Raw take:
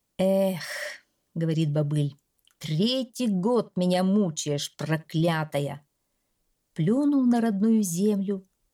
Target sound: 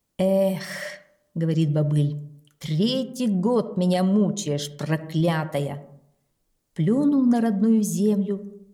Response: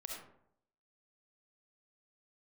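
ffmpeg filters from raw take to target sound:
-filter_complex "[0:a]asplit=2[a][b];[1:a]atrim=start_sample=2205,lowpass=2.2k,lowshelf=f=460:g=8.5[c];[b][c]afir=irnorm=-1:irlink=0,volume=-10dB[d];[a][d]amix=inputs=2:normalize=0"

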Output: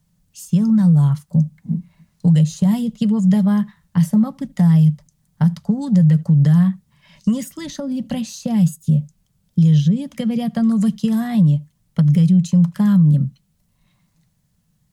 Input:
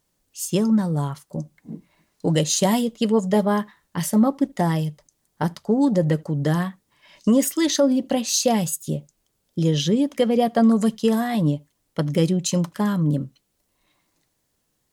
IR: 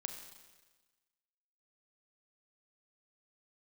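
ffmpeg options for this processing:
-filter_complex "[0:a]acrossover=split=250|1400[a][b][c];[a]acompressor=threshold=-28dB:ratio=4[d];[b]acompressor=threshold=-28dB:ratio=4[e];[c]acompressor=threshold=-36dB:ratio=4[f];[d][e][f]amix=inputs=3:normalize=0,lowshelf=f=240:t=q:w=3:g=11,alimiter=limit=-7.5dB:level=0:latency=1:release=75"

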